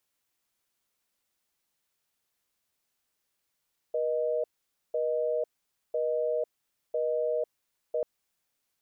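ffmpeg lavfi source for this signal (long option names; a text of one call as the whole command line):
ffmpeg -f lavfi -i "aevalsrc='0.0376*(sin(2*PI*480*t)+sin(2*PI*620*t))*clip(min(mod(t,1),0.5-mod(t,1))/0.005,0,1)':duration=4.09:sample_rate=44100" out.wav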